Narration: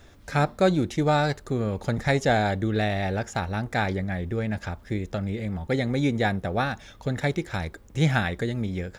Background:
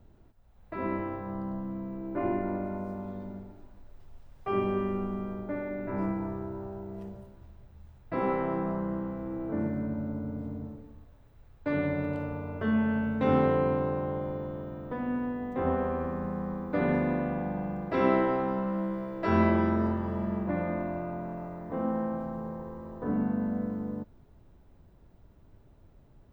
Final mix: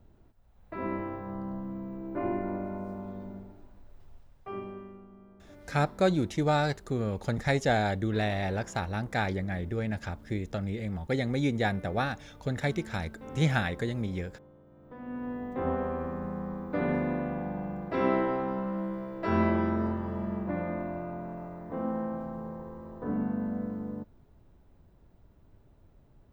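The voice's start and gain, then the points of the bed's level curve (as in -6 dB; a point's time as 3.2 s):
5.40 s, -4.0 dB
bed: 4.12 s -1.5 dB
5.05 s -19 dB
14.65 s -19 dB
15.33 s -2 dB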